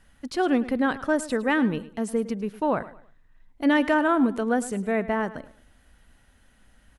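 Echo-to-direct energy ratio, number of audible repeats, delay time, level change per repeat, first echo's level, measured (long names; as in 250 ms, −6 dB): −16.0 dB, 2, 107 ms, −10.0 dB, −16.5 dB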